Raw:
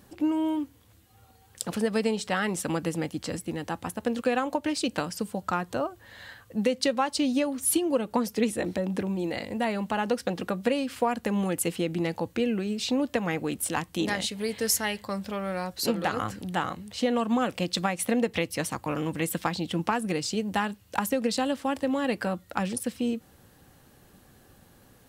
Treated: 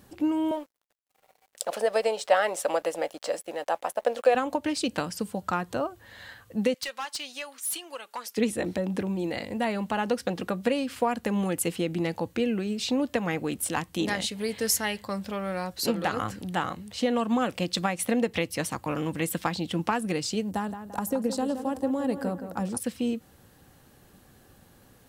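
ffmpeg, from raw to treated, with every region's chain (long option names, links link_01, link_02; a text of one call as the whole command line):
ffmpeg -i in.wav -filter_complex "[0:a]asettb=1/sr,asplit=3[link_01][link_02][link_03];[link_01]atrim=end=0.514[link_04];[link_02]atrim=start=0.51:end=4.35,asetpts=PTS-STARTPTS,afade=type=in:duration=0.004:curve=qsin,afade=type=out:start_time=3.836:duration=0.004:curve=qsin,highpass=frequency=600:width_type=q:width=4.9,aeval=exprs='sgn(val(0))*max(abs(val(0))-0.002,0)':channel_layout=same[link_05];[link_03]atrim=start=4.346[link_06];[link_04][link_05]acrossfade=duration=0.004:curve1=hsin:curve2=qsin[link_07];[link_07][link_06]acrossfade=duration=0.004:curve1=qsin:curve2=hsin,asettb=1/sr,asplit=3[link_08][link_09][link_10];[link_08]atrim=end=6.744[link_11];[link_09]atrim=start=6.74:end=8.37,asetpts=PTS-STARTPTS,afade=type=in:duration=0.004:curve=qsin,afade=type=out:start_time=1.626:duration=0.004:curve=qsin,highpass=1200,asoftclip=type=hard:threshold=-28dB[link_12];[link_10]atrim=start=8.366[link_13];[link_11][link_12]acrossfade=duration=0.004:curve1=hsin:curve2=qsin[link_14];[link_14][link_13]acrossfade=duration=0.004:curve1=qsin:curve2=hsin,asettb=1/sr,asplit=3[link_15][link_16][link_17];[link_15]atrim=end=20.514[link_18];[link_16]atrim=start=20.51:end=22.77,asetpts=PTS-STARTPTS,afade=type=in:duration=0.004:curve=qsin,afade=type=out:start_time=2.256:duration=0.004:curve=qsin,equalizer=frequency=2500:width=0.69:gain=-13.5,asplit=2[link_19][link_20];[link_20]adelay=171,lowpass=frequency=2500:poles=1,volume=-9dB,asplit=2[link_21][link_22];[link_22]adelay=171,lowpass=frequency=2500:poles=1,volume=0.47,asplit=2[link_23][link_24];[link_24]adelay=171,lowpass=frequency=2500:poles=1,volume=0.47,asplit=2[link_25][link_26];[link_26]adelay=171,lowpass=frequency=2500:poles=1,volume=0.47,asplit=2[link_27][link_28];[link_28]adelay=171,lowpass=frequency=2500:poles=1,volume=0.47[link_29];[link_19][link_21][link_23][link_25][link_27][link_29]amix=inputs=6:normalize=0,atrim=end_sample=99666[link_30];[link_17]atrim=start=22.766[link_31];[link_18][link_30]acrossfade=duration=0.004:curve1=hsin:curve2=qsin[link_32];[link_32][link_31]acrossfade=duration=0.004:curve1=qsin:curve2=hsin" out.wav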